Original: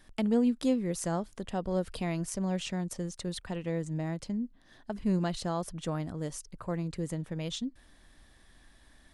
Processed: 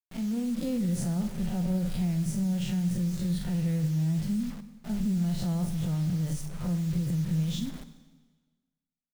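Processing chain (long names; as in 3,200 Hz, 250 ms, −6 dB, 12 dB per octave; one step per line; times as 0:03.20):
spectrum smeared in time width 104 ms
notch filter 1,100 Hz, Q 7
downward expander −46 dBFS
low shelf with overshoot 240 Hz +11 dB, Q 1.5
mains-hum notches 50/100/150/200/250/300 Hz
comb filter 5.6 ms, depth 30%
brickwall limiter −28 dBFS, peak gain reduction 19 dB
automatic gain control gain up to 3 dB
bit-depth reduction 8 bits, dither none
on a send: convolution reverb RT60 1.4 s, pre-delay 33 ms, DRR 12 dB
on the sum: level +1.5 dB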